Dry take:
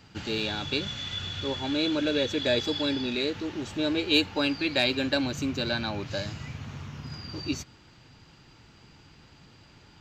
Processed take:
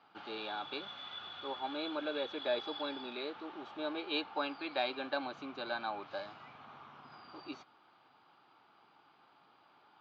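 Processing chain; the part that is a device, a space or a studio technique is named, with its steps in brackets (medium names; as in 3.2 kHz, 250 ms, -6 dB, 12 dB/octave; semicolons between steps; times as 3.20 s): phone earpiece (cabinet simulation 470–3300 Hz, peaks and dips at 490 Hz -4 dB, 780 Hz +7 dB, 1.2 kHz +7 dB, 1.9 kHz -9 dB, 2.7 kHz -7 dB); trim -6 dB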